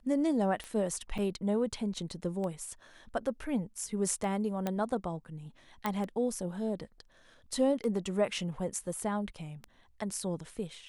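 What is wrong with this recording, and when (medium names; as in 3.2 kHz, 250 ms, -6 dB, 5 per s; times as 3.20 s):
tick 33 1/3 rpm -26 dBFS
1.18–1.19 s: dropout 6.1 ms
4.67 s: pop -18 dBFS
5.86 s: pop -17 dBFS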